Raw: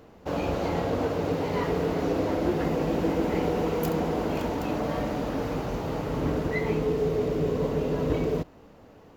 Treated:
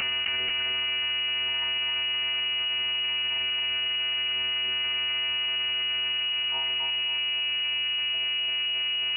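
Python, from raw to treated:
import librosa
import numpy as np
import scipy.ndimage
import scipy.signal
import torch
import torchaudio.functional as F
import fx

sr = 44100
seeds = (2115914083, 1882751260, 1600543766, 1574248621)

y = scipy.signal.sosfilt(scipy.signal.butter(2, 47.0, 'highpass', fs=sr, output='sos'), x)
y = fx.peak_eq(y, sr, hz=360.0, db=-7.0, octaves=1.6)
y = np.maximum(y, 0.0)
y = fx.doubler(y, sr, ms=45.0, db=-7.5)
y = fx.echo_feedback(y, sr, ms=269, feedback_pct=45, wet_db=-3.5)
y = fx.lpc_monotone(y, sr, seeds[0], pitch_hz=280.0, order=10)
y = fx.freq_invert(y, sr, carrier_hz=2900)
y = fx.env_flatten(y, sr, amount_pct=100)
y = y * 10.0 ** (-4.0 / 20.0)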